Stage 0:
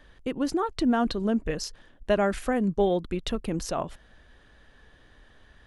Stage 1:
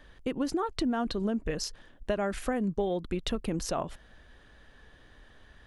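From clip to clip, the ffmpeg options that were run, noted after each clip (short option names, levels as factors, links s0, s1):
-af "acompressor=threshold=0.0501:ratio=6"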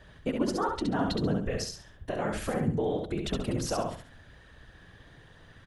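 -filter_complex "[0:a]alimiter=limit=0.0891:level=0:latency=1:release=306,afftfilt=real='hypot(re,im)*cos(2*PI*random(0))':imag='hypot(re,im)*sin(2*PI*random(1))':win_size=512:overlap=0.75,asplit=2[s0][s1];[s1]aecho=0:1:68|136|204|272:0.631|0.183|0.0531|0.0154[s2];[s0][s2]amix=inputs=2:normalize=0,volume=2.24"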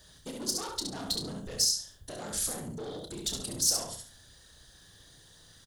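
-filter_complex "[0:a]asoftclip=type=tanh:threshold=0.0376,aexciter=amount=10.1:drive=5.5:freq=3700,asplit=2[s0][s1];[s1]adelay=30,volume=0.376[s2];[s0][s2]amix=inputs=2:normalize=0,volume=0.422"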